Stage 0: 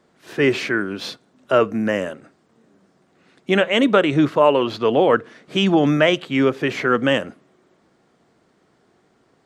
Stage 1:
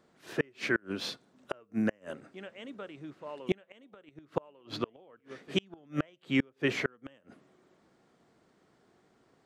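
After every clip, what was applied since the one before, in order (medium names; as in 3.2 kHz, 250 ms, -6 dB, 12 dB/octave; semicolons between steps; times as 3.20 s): reverse echo 1147 ms -22 dB; inverted gate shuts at -9 dBFS, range -35 dB; trim -6.5 dB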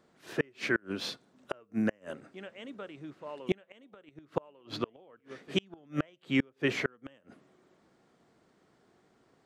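no audible change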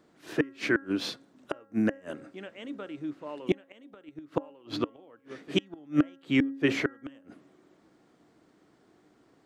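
peaking EQ 300 Hz +9.5 dB 0.26 oct; de-hum 273.1 Hz, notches 7; trim +2 dB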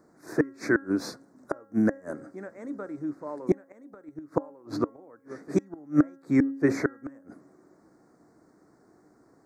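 Butterworth band-stop 3 kHz, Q 0.87; trim +3 dB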